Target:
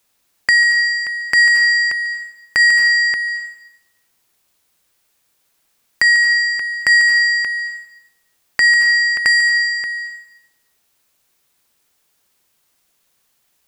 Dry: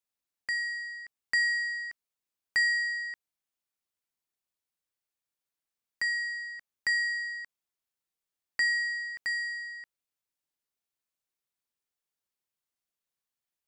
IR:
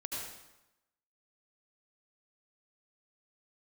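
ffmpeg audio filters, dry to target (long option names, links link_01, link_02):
-filter_complex "[0:a]acompressor=threshold=-33dB:ratio=6,asplit=2[link_01][link_02];[1:a]atrim=start_sample=2205,highshelf=frequency=5500:gain=10.5,adelay=145[link_03];[link_02][link_03]afir=irnorm=-1:irlink=0,volume=-15dB[link_04];[link_01][link_04]amix=inputs=2:normalize=0,alimiter=level_in=25.5dB:limit=-1dB:release=50:level=0:latency=1,volume=-1dB"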